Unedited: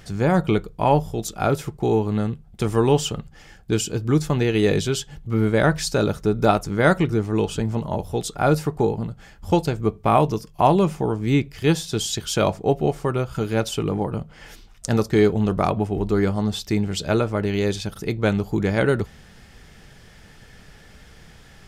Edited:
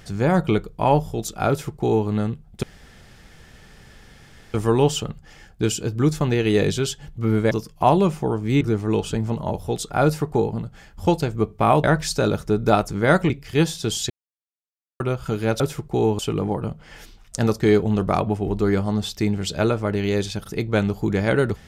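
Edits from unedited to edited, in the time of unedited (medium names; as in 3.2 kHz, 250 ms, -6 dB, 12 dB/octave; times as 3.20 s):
1.49–2.08 s: copy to 13.69 s
2.63 s: insert room tone 1.91 s
5.60–7.06 s: swap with 10.29–11.39 s
12.19–13.09 s: mute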